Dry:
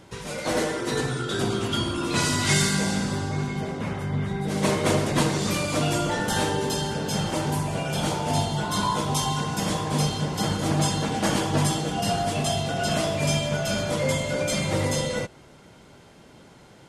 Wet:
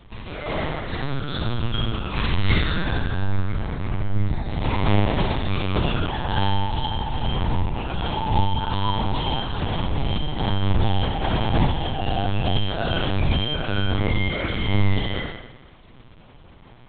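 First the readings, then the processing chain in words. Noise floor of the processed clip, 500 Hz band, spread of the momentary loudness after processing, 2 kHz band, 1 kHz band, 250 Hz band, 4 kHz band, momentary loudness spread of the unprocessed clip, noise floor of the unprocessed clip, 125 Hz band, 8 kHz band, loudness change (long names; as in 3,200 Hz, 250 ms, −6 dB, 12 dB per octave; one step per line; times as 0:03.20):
−47 dBFS, −3.0 dB, 6 LU, 0.0 dB, +1.0 dB, −1.0 dB, +0.5 dB, 5 LU, −50 dBFS, +3.5 dB, below −40 dB, +0.5 dB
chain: graphic EQ with 15 bands 100 Hz +9 dB, 400 Hz −11 dB, 1,600 Hz −4 dB
flutter between parallel walls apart 8.9 metres, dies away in 0.93 s
linear-prediction vocoder at 8 kHz pitch kept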